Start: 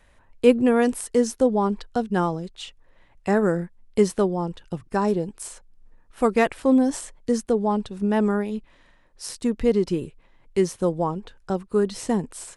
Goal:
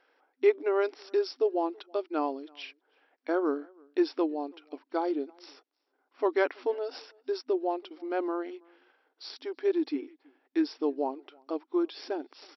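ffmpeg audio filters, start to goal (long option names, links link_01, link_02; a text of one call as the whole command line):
ffmpeg -i in.wav -filter_complex "[0:a]afftfilt=real='re*between(b*sr/4096,310,6800)':imag='im*between(b*sr/4096,310,6800)':win_size=4096:overlap=0.75,asetrate=37084,aresample=44100,atempo=1.18921,asplit=2[link_01][link_02];[link_02]adelay=326.5,volume=-28dB,highshelf=frequency=4000:gain=-7.35[link_03];[link_01][link_03]amix=inputs=2:normalize=0,volume=-5.5dB" out.wav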